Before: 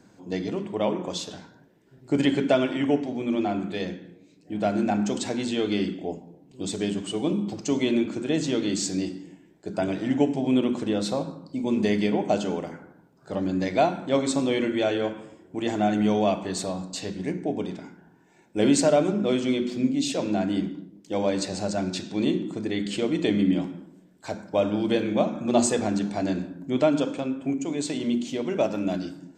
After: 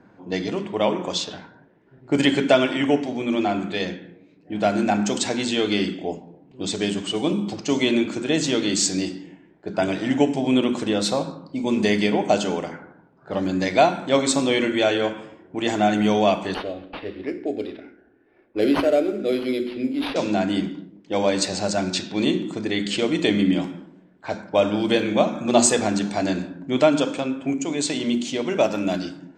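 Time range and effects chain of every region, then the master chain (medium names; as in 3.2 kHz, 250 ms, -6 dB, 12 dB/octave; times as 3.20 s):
16.54–20.16 s: dynamic bell 4.1 kHz, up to -5 dB, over -43 dBFS, Q 0.89 + static phaser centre 400 Hz, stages 4 + decimation joined by straight lines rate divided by 6×
whole clip: level-controlled noise filter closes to 1.6 kHz, open at -22.5 dBFS; tilt shelf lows -3.5 dB, about 690 Hz; trim +5 dB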